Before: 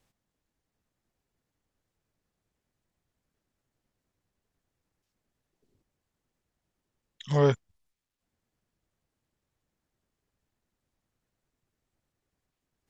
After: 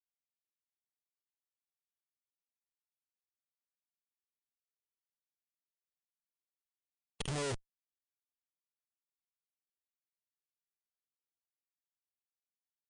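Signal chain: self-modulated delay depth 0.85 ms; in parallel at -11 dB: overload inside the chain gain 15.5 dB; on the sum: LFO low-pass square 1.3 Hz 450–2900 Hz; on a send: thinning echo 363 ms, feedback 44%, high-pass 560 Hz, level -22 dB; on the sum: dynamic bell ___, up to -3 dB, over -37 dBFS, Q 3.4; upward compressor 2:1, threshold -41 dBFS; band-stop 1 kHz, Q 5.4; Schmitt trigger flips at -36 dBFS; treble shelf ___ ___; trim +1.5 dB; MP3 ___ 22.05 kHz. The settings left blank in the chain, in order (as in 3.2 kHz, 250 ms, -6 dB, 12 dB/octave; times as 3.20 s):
190 Hz, 4.9 kHz, +10 dB, 80 kbps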